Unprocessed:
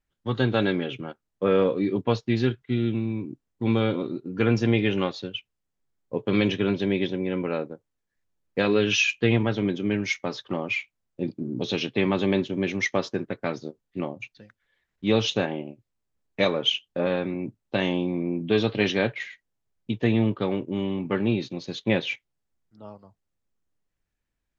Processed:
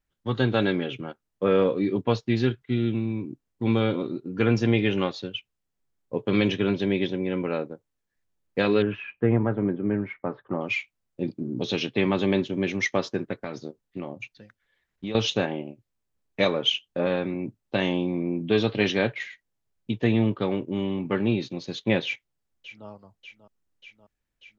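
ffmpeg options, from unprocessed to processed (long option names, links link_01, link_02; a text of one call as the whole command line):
ffmpeg -i in.wav -filter_complex "[0:a]asettb=1/sr,asplit=3[link_01][link_02][link_03];[link_01]atrim=end=8.824[link_04];[link_02]atrim=start=8.82:end=10.61,asetpts=PTS-STARTPTS,afade=type=in:duration=0.004:curve=qsin,afade=type=out:start_time=1.786:duration=0.004:curve=qsin,lowpass=frequency=1600:width=0.5412,lowpass=frequency=1600:width=1.3066[link_05];[link_03]atrim=start=10.606[link_06];[link_04][link_05]acrossfade=duration=0.004:curve1=hsin:curve2=qsin[link_07];[link_07][link_06]acrossfade=duration=0.004:curve1=qsin:curve2=hsin,asettb=1/sr,asplit=3[link_08][link_09][link_10];[link_08]atrim=end=13.404[link_11];[link_09]atrim=start=13.4:end=15.15,asetpts=PTS-STARTPTS,afade=type=in:duration=0.004:curve=qsin,afade=type=out:start_time=1.746:duration=0.004:curve=qsin,acompressor=threshold=-28dB:ratio=6:attack=3.2:release=140:knee=1:detection=peak[link_12];[link_10]atrim=start=15.146[link_13];[link_11][link_12]acrossfade=duration=0.004:curve1=hsin:curve2=qsin[link_14];[link_14][link_13]acrossfade=duration=0.004:curve1=qsin:curve2=hsin,asplit=2[link_15][link_16];[link_16]afade=type=in:start_time=22.05:duration=0.01,afade=type=out:start_time=22.88:duration=0.01,aecho=0:1:590|1180|1770|2360|2950|3540|4130|4720|5310|5900|6490:0.223872|0.167904|0.125928|0.094446|0.0708345|0.0531259|0.0398444|0.0298833|0.0224125|0.0168094|0.012607[link_17];[link_15][link_17]amix=inputs=2:normalize=0" out.wav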